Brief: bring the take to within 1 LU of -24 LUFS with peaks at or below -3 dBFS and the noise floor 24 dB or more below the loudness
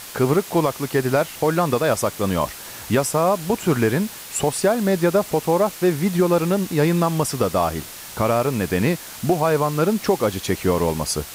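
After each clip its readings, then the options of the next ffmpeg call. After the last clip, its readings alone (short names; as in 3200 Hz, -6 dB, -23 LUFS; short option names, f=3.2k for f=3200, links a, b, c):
noise floor -37 dBFS; noise floor target -45 dBFS; loudness -20.5 LUFS; peak -7.0 dBFS; loudness target -24.0 LUFS
-> -af "afftdn=nr=8:nf=-37"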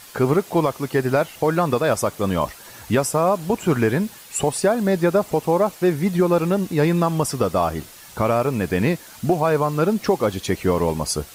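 noise floor -43 dBFS; noise floor target -45 dBFS
-> -af "afftdn=nr=6:nf=-43"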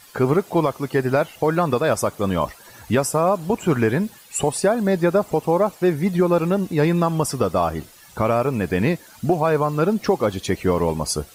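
noise floor -47 dBFS; loudness -21.0 LUFS; peak -8.0 dBFS; loudness target -24.0 LUFS
-> -af "volume=-3dB"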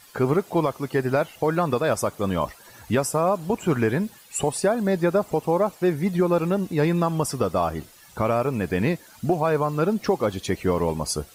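loudness -24.0 LUFS; peak -11.0 dBFS; noise floor -50 dBFS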